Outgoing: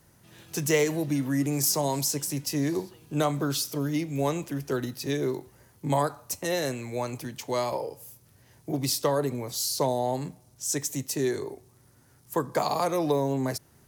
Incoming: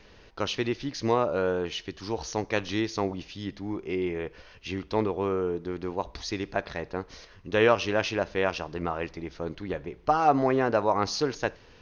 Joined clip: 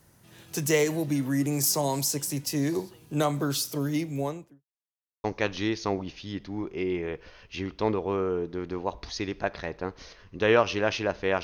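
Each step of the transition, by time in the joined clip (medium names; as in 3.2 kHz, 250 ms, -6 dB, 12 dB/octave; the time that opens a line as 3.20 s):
outgoing
3.99–4.65 s: studio fade out
4.65–5.24 s: mute
5.24 s: go over to incoming from 2.36 s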